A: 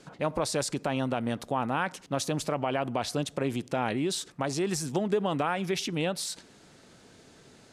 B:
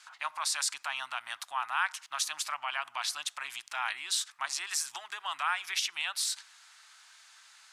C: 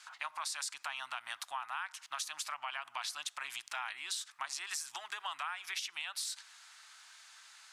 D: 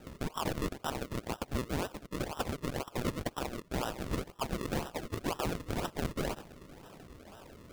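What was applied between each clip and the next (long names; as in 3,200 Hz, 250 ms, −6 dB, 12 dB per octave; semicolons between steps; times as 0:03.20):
inverse Chebyshev high-pass filter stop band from 520 Hz, stop band 40 dB; level +3 dB
downward compressor 6 to 1, threshold −36 dBFS, peak gain reduction 12 dB
sample-and-hold swept by an LFO 39×, swing 100% 2 Hz; level +5.5 dB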